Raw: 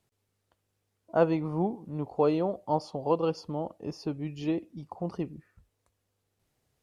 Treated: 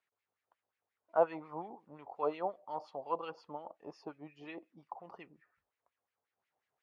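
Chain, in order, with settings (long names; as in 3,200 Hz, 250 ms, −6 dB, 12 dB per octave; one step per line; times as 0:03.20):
auto-filter band-pass sine 5.6 Hz 730–2,200 Hz
level +1 dB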